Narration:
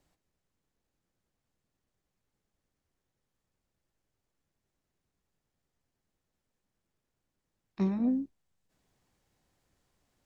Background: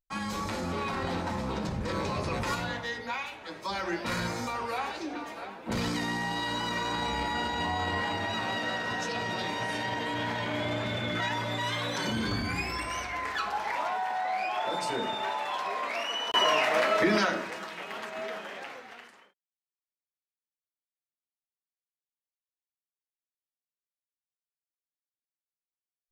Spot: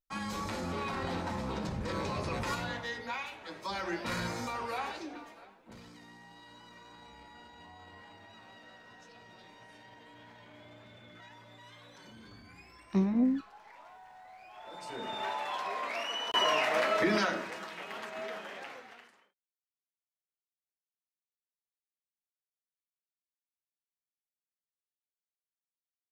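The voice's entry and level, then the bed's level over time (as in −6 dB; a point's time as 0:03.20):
5.15 s, +1.5 dB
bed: 0:04.92 −3.5 dB
0:05.85 −22.5 dB
0:14.44 −22.5 dB
0:15.21 −3.5 dB
0:18.79 −3.5 dB
0:20.65 −30 dB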